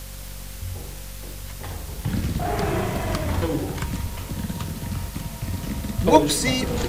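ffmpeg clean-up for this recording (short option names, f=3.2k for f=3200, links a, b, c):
-af "adeclick=t=4,bandreject=f=47:t=h:w=4,bandreject=f=94:t=h:w=4,bandreject=f=141:t=h:w=4,bandreject=f=188:t=h:w=4,bandreject=f=235:t=h:w=4,bandreject=f=530:w=30,afwtdn=0.0089"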